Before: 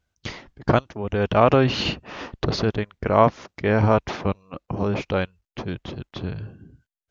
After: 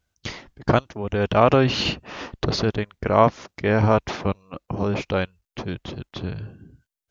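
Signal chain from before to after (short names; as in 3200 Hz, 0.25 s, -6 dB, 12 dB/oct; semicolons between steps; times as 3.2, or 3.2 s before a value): high shelf 5100 Hz +5.5 dB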